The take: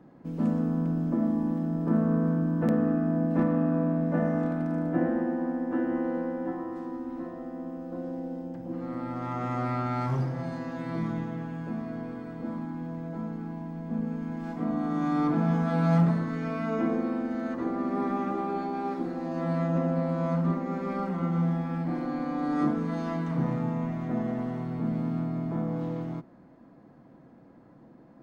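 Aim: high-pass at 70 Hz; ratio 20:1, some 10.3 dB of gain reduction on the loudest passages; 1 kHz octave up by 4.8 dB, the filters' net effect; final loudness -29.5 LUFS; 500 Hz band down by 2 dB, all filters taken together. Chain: high-pass 70 Hz; peaking EQ 500 Hz -6 dB; peaking EQ 1 kHz +8.5 dB; compression 20:1, threshold -29 dBFS; trim +5 dB

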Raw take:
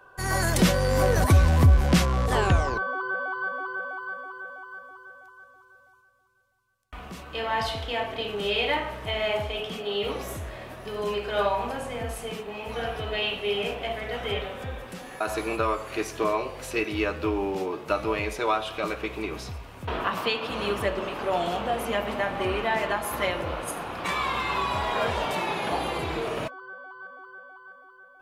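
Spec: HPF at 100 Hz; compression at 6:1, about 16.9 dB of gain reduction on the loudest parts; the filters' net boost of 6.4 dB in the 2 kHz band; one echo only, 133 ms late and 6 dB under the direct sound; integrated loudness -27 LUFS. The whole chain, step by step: high-pass 100 Hz; peaking EQ 2 kHz +8.5 dB; compression 6:1, threshold -34 dBFS; delay 133 ms -6 dB; trim +8.5 dB

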